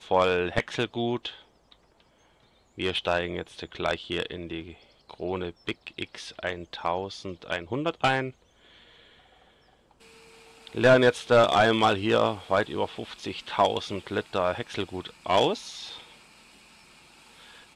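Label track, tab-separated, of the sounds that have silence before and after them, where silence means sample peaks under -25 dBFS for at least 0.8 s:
2.800000	8.270000	sound
10.770000	15.540000	sound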